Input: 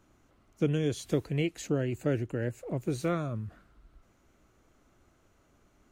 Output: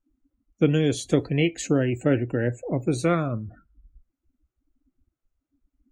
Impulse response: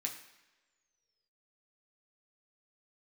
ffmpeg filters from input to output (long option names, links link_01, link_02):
-filter_complex "[0:a]asplit=2[link_01][link_02];[1:a]atrim=start_sample=2205,atrim=end_sample=3528[link_03];[link_02][link_03]afir=irnorm=-1:irlink=0,volume=-6.5dB[link_04];[link_01][link_04]amix=inputs=2:normalize=0,afftdn=noise_reduction=34:noise_floor=-49,volume=6.5dB"